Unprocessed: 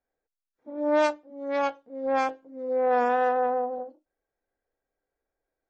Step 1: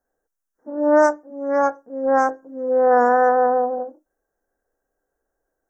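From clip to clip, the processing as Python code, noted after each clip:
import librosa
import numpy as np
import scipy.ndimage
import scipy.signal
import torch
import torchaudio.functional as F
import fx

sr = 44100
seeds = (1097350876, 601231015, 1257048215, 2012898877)

y = scipy.signal.sosfilt(scipy.signal.ellip(3, 1.0, 50, [1700.0, 5800.0], 'bandstop', fs=sr, output='sos'), x)
y = fx.peak_eq(y, sr, hz=100.0, db=-15.0, octaves=0.44)
y = y * librosa.db_to_amplitude(8.5)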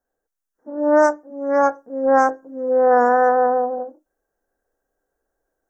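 y = fx.rider(x, sr, range_db=10, speed_s=2.0)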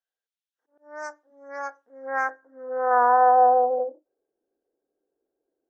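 y = fx.auto_swell(x, sr, attack_ms=399.0)
y = fx.filter_sweep_bandpass(y, sr, from_hz=3300.0, to_hz=350.0, start_s=1.7, end_s=4.35, q=2.6)
y = y * librosa.db_to_amplitude(3.5)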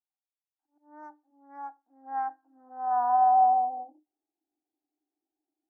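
y = fx.double_bandpass(x, sr, hz=490.0, octaves=1.4)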